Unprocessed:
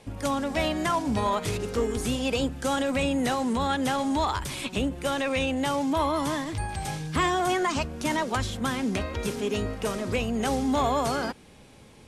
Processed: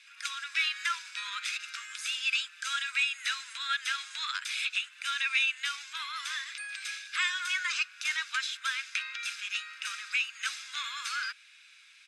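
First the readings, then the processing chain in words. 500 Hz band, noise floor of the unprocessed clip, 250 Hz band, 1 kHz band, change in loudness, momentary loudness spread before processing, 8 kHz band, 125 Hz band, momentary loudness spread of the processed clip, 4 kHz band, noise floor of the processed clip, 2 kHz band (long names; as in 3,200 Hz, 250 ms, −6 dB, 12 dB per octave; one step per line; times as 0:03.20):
below −40 dB, −51 dBFS, below −40 dB, −12.0 dB, −4.5 dB, 5 LU, −2.5 dB, below −40 dB, 8 LU, +2.5 dB, −57 dBFS, +3.5 dB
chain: Butterworth high-pass 1,500 Hz 48 dB per octave
high-frequency loss of the air 84 metres
comb filter 0.8 ms, depth 41%
level +4.5 dB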